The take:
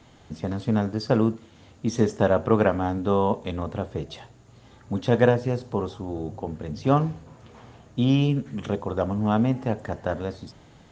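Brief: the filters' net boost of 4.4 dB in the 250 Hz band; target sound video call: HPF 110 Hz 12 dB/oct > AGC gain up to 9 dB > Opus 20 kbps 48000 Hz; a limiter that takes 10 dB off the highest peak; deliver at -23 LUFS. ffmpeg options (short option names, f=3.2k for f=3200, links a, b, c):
-af "equalizer=f=250:t=o:g=5.5,alimiter=limit=-12.5dB:level=0:latency=1,highpass=110,dynaudnorm=m=9dB,volume=3dB" -ar 48000 -c:a libopus -b:a 20k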